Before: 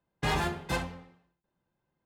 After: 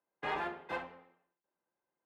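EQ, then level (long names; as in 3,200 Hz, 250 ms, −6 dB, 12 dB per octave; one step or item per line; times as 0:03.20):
three-way crossover with the lows and the highs turned down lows −22 dB, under 290 Hz, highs −23 dB, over 2,900 Hz
−4.5 dB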